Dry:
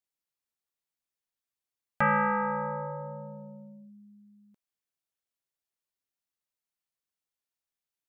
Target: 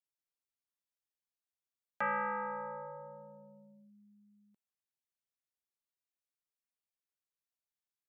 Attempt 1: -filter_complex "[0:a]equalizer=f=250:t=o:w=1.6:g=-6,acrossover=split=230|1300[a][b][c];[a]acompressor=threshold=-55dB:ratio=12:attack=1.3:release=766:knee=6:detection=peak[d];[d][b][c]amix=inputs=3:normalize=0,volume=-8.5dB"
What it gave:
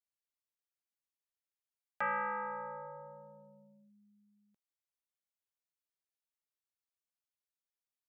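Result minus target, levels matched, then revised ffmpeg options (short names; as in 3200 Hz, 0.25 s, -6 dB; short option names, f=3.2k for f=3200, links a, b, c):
250 Hz band -4.0 dB
-filter_complex "[0:a]acrossover=split=230|1300[a][b][c];[a]acompressor=threshold=-55dB:ratio=12:attack=1.3:release=766:knee=6:detection=peak[d];[d][b][c]amix=inputs=3:normalize=0,volume=-8.5dB"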